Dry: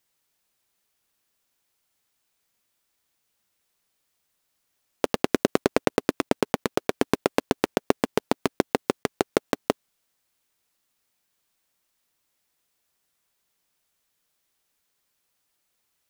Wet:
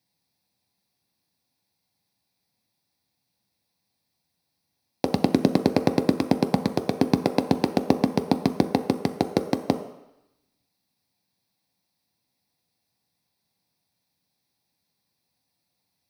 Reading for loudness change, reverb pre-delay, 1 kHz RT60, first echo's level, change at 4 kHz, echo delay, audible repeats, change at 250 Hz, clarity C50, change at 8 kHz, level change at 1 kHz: +2.5 dB, 3 ms, 0.95 s, no echo, -0.5 dB, no echo, no echo, +5.5 dB, 11.0 dB, -5.5 dB, +1.0 dB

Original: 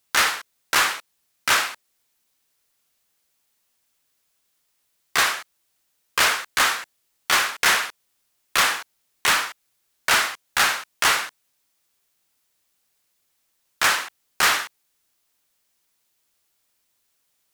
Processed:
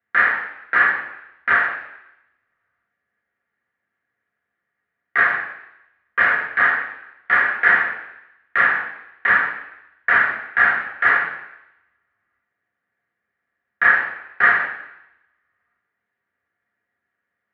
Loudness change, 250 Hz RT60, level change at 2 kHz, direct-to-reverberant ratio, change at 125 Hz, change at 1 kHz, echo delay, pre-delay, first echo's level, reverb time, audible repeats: +3.0 dB, 0.80 s, +7.0 dB, -1.0 dB, no reading, +2.0 dB, no echo, 3 ms, no echo, 0.85 s, no echo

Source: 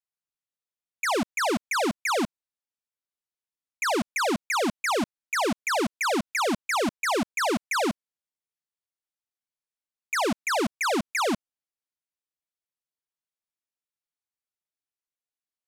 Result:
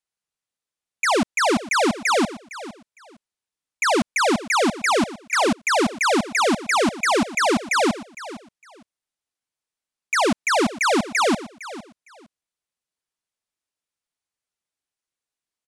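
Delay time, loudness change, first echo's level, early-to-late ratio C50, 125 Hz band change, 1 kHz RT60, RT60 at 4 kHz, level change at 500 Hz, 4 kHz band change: 458 ms, +6.0 dB, -16.0 dB, no reverb, +6.0 dB, no reverb, no reverb, +6.0 dB, +6.0 dB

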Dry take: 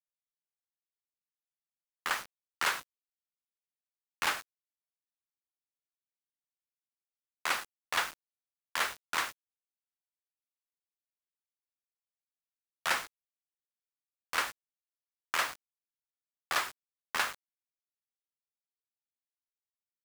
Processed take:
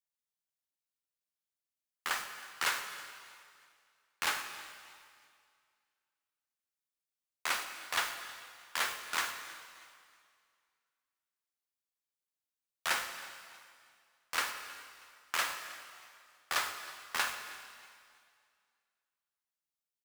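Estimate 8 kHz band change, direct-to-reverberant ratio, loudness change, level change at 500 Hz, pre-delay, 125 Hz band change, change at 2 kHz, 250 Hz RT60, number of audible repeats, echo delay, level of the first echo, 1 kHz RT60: +1.0 dB, 6.0 dB, -2.0 dB, -3.0 dB, 8 ms, no reading, -1.5 dB, 2.1 s, 2, 318 ms, -20.5 dB, 2.2 s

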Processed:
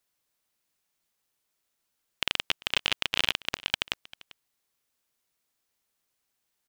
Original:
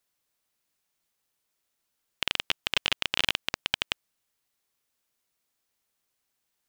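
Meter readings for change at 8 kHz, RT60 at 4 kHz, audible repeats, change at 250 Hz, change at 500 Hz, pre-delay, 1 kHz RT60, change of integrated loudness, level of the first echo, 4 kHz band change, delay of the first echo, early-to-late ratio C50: 0.0 dB, no reverb, 1, 0.0 dB, 0.0 dB, no reverb, no reverb, 0.0 dB, -21.0 dB, 0.0 dB, 394 ms, no reverb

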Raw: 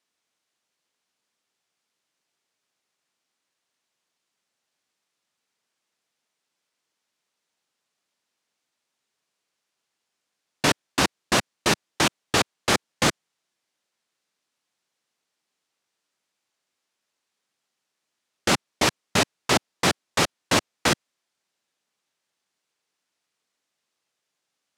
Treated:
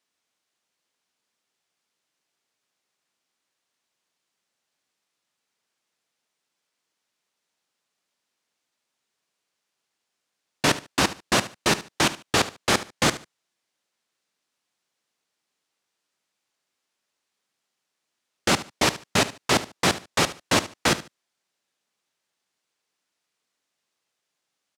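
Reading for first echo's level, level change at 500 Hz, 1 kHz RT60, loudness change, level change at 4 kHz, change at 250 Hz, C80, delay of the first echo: -15.5 dB, 0.0 dB, no reverb, 0.0 dB, 0.0 dB, 0.0 dB, no reverb, 73 ms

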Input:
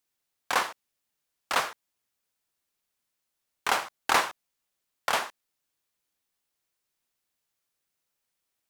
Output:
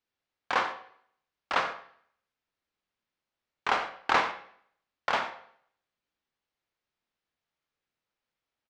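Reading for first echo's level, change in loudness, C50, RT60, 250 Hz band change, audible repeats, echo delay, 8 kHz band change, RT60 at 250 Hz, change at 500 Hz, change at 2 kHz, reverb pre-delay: -16.5 dB, -1.5 dB, 10.5 dB, 0.60 s, +0.5 dB, 1, 89 ms, -14.0 dB, 0.70 s, 0.0 dB, -1.0 dB, 14 ms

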